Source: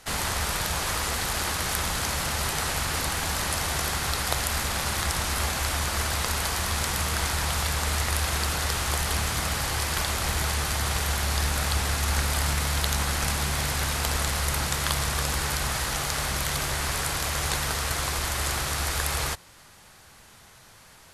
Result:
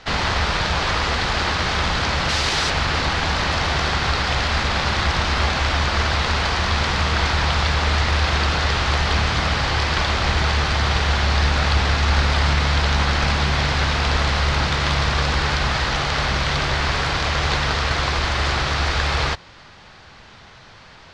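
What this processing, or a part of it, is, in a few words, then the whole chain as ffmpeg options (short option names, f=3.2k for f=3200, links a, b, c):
synthesiser wavefolder: -filter_complex "[0:a]asettb=1/sr,asplit=3[a][b][c];[a]atrim=end=2.294[d];[b]atrim=start=2.29:end=2.7,asetpts=PTS-STARTPTS,afade=t=in:d=0.004:c=qsin,afade=t=out:st=0.406:d=0.004:c=qsin,aemphasis=mode=production:type=75kf[e];[c]atrim=start=2.696[f];[d][e]acrossfade=d=0.004:c1=hsin:c2=qsin[g];[g][f]acrossfade=d=0.004:c1=qsin:c2=hsin,aeval=exprs='0.133*(abs(mod(val(0)/0.133+3,4)-2)-1)':c=same,lowpass=f=4.8k:w=0.5412,lowpass=f=4.8k:w=1.3066,volume=8.5dB"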